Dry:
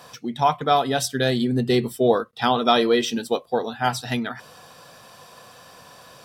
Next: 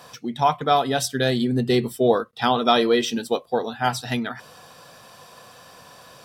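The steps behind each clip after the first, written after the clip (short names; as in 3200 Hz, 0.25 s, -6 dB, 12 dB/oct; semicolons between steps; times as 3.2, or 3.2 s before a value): nothing audible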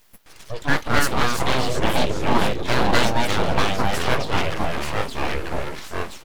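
echoes that change speed 0.135 s, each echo -3 st, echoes 3; bands offset in time highs, lows 0.26 s, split 5000 Hz; full-wave rectifier; gain +1.5 dB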